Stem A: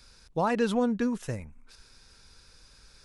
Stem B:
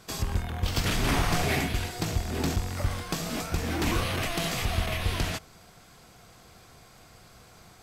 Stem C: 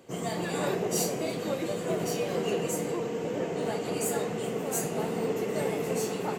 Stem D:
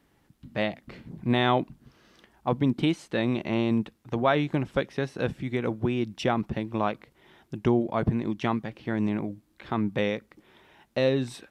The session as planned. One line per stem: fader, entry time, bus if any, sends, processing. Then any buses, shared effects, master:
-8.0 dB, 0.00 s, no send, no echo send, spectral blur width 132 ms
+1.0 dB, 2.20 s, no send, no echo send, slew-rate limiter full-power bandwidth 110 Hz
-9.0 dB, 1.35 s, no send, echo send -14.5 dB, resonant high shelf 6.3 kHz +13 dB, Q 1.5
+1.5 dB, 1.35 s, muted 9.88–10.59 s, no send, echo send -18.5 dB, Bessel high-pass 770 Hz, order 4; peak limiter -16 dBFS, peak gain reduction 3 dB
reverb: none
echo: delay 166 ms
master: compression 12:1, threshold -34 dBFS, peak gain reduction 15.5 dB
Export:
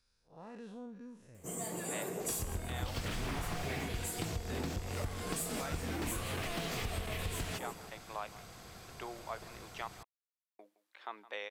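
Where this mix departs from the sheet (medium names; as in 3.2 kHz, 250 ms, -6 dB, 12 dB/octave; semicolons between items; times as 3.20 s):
stem A -8.0 dB -> -19.5 dB; stem D +1.5 dB -> -9.0 dB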